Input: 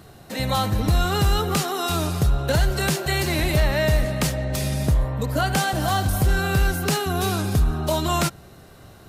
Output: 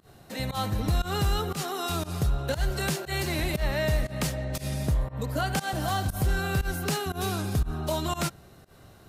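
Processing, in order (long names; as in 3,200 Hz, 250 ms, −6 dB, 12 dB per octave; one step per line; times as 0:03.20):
fake sidechain pumping 118 BPM, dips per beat 1, −22 dB, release 117 ms
level −6 dB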